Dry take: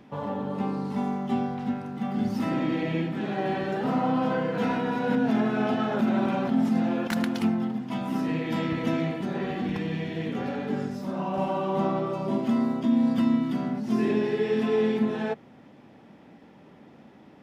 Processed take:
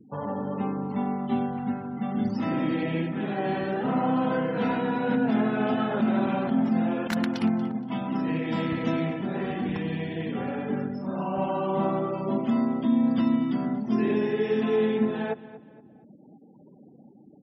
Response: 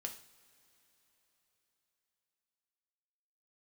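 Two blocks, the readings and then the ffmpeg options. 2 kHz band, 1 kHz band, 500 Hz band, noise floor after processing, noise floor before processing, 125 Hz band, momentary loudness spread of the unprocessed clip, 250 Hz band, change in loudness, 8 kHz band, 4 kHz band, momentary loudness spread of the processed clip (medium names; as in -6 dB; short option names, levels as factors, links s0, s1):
0.0 dB, 0.0 dB, 0.0 dB, -52 dBFS, -52 dBFS, 0.0 dB, 7 LU, 0.0 dB, 0.0 dB, no reading, -1.5 dB, 7 LU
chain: -filter_complex "[0:a]afftfilt=real='re*gte(hypot(re,im),0.00708)':imag='im*gte(hypot(re,im),0.00708)':win_size=1024:overlap=0.75,asplit=2[s0][s1];[s1]adelay=235,lowpass=f=4200:p=1,volume=0.158,asplit=2[s2][s3];[s3]adelay=235,lowpass=f=4200:p=1,volume=0.38,asplit=2[s4][s5];[s5]adelay=235,lowpass=f=4200:p=1,volume=0.38[s6];[s0][s2][s4][s6]amix=inputs=4:normalize=0"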